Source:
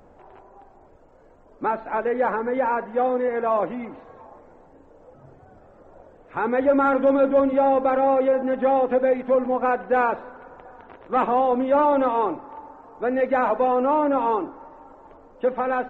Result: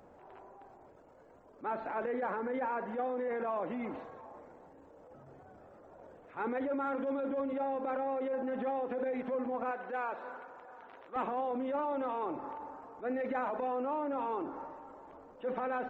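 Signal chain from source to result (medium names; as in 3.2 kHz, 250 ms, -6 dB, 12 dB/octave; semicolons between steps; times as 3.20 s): transient shaper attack -12 dB, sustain +5 dB; compression 10:1, threshold -27 dBFS, peak gain reduction 12 dB; high-pass 110 Hz 6 dB/octave, from 9.71 s 610 Hz, from 11.16 s 88 Hz; trim -4.5 dB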